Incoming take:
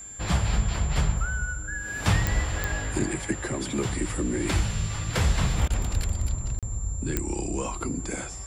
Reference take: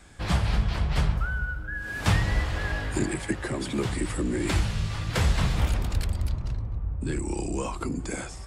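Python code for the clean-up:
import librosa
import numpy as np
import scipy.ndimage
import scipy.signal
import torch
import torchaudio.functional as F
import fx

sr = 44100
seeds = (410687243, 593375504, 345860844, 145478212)

y = fx.fix_declick_ar(x, sr, threshold=10.0)
y = fx.notch(y, sr, hz=7300.0, q=30.0)
y = fx.fix_interpolate(y, sr, at_s=(6.59,), length_ms=37.0)
y = fx.fix_interpolate(y, sr, at_s=(5.68,), length_ms=21.0)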